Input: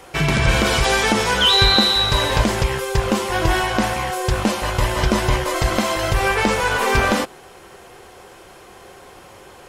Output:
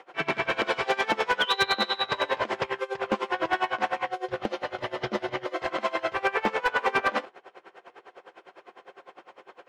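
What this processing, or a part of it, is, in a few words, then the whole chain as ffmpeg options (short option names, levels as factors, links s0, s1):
helicopter radio: -filter_complex "[0:a]asettb=1/sr,asplit=3[s0][s1][s2];[s0]atrim=end=4.064[s3];[s1]atrim=start=4.06:end=5.59,asetpts=PTS-STARTPTS,afade=t=in:d=0.004:c=qsin,afade=t=out:st=1.526:d=0.004:c=qsin,equalizer=f=125:t=o:w=0.33:g=8,equalizer=f=1000:t=o:w=0.33:g=-10,equalizer=f=1600:t=o:w=0.33:g=-5,equalizer=f=2500:t=o:w=0.33:g=-5,equalizer=f=8000:t=o:w=0.33:g=-7[s4];[s2]atrim=start=5.586[s5];[s3][s4]acrossfade=d=0.004:c1=hsin:c2=qsin[s6];[s6][s5]acrossfade=d=0.004:c1=qsin:c2=hsin,highpass=380,lowpass=2600,aeval=exprs='val(0)*pow(10,-23*(0.5-0.5*cos(2*PI*9.9*n/s))/20)':c=same,asoftclip=type=hard:threshold=0.168"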